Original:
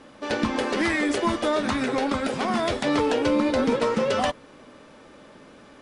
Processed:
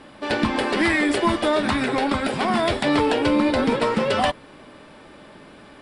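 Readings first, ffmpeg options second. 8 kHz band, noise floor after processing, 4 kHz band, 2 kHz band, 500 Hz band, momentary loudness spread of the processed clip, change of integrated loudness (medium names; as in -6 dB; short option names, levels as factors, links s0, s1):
+0.5 dB, -46 dBFS, +4.0 dB, +4.5 dB, +2.0 dB, 4 LU, +3.0 dB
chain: -af "equalizer=f=250:t=o:w=0.33:g=-4,equalizer=f=500:t=o:w=0.33:g=-6,equalizer=f=1250:t=o:w=0.33:g=-3,equalizer=f=6300:t=o:w=0.33:g=-11,acontrast=69,volume=0.841"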